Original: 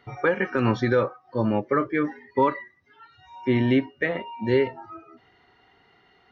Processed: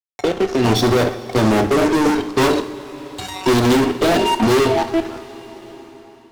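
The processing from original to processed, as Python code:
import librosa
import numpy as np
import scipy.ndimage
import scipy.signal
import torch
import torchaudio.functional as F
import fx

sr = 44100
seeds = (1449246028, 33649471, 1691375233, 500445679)

y = fx.fade_in_head(x, sr, length_s=2.08)
y = scipy.signal.sosfilt(scipy.signal.ellip(3, 1.0, 40, [840.0, 3200.0], 'bandstop', fs=sr, output='sos'), y)
y = fx.peak_eq(y, sr, hz=4800.0, db=8.0, octaves=1.8)
y = fx.hum_notches(y, sr, base_hz=50, count=9)
y = y + 0.59 * np.pad(y, (int(2.9 * sr / 1000.0), 0))[:len(y)]
y = fx.level_steps(y, sr, step_db=11)
y = fx.fuzz(y, sr, gain_db=44.0, gate_db=-53.0)
y = fx.rev_double_slope(y, sr, seeds[0], early_s=0.49, late_s=3.0, knee_db=-15, drr_db=8.0)
y = fx.band_squash(y, sr, depth_pct=40)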